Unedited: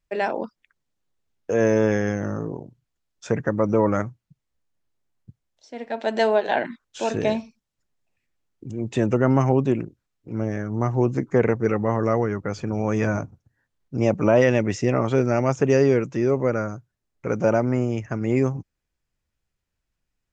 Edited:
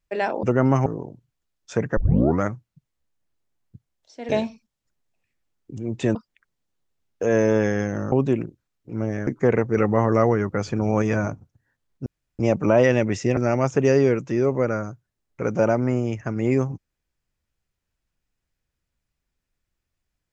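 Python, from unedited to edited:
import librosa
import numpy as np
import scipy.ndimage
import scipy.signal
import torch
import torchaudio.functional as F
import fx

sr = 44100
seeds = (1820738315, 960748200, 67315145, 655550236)

y = fx.edit(x, sr, fx.swap(start_s=0.43, length_s=1.97, other_s=9.08, other_length_s=0.43),
    fx.tape_start(start_s=3.51, length_s=0.44),
    fx.cut(start_s=5.83, length_s=1.39),
    fx.cut(start_s=10.66, length_s=0.52),
    fx.clip_gain(start_s=11.68, length_s=1.25, db=3.0),
    fx.insert_room_tone(at_s=13.97, length_s=0.33),
    fx.cut(start_s=14.95, length_s=0.27), tone=tone)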